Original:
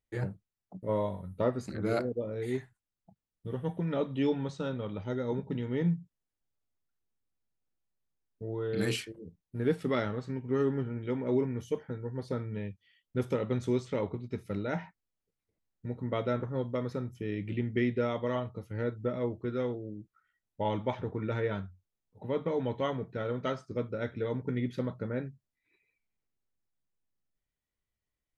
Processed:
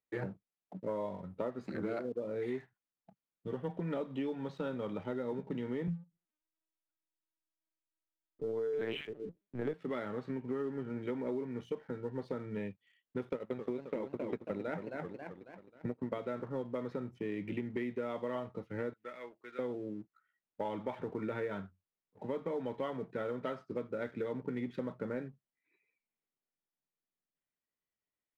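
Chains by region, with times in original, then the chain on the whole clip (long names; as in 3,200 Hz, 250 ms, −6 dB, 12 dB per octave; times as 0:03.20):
0:05.87–0:09.74: comb filter 6.9 ms, depth 92% + tape delay 77 ms, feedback 23%, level −24 dB, low-pass 1,100 Hz + linear-prediction vocoder at 8 kHz pitch kept
0:13.29–0:16.18: transient designer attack +9 dB, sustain −11 dB + feedback echo with a swinging delay time 269 ms, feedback 49%, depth 182 cents, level −11 dB
0:18.93–0:19.59: resonant band-pass 2,400 Hz, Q 1.5 + one half of a high-frequency compander encoder only
whole clip: three-way crossover with the lows and the highs turned down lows −17 dB, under 160 Hz, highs −21 dB, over 3,600 Hz; downward compressor 10 to 1, threshold −35 dBFS; leveller curve on the samples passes 1; level −1.5 dB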